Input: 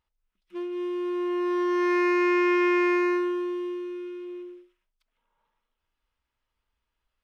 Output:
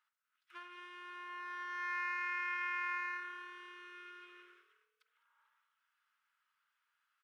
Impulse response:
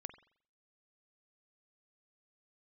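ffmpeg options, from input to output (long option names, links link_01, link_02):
-filter_complex "[0:a]acompressor=threshold=-35dB:ratio=6,highpass=frequency=1400:width_type=q:width=4,asplit=4[link_01][link_02][link_03][link_04];[link_02]adelay=206,afreqshift=38,volume=-19.5dB[link_05];[link_03]adelay=412,afreqshift=76,volume=-26.8dB[link_06];[link_04]adelay=618,afreqshift=114,volume=-34.2dB[link_07];[link_01][link_05][link_06][link_07]amix=inputs=4:normalize=0[link_08];[1:a]atrim=start_sample=2205[link_09];[link_08][link_09]afir=irnorm=-1:irlink=0,volume=2.5dB"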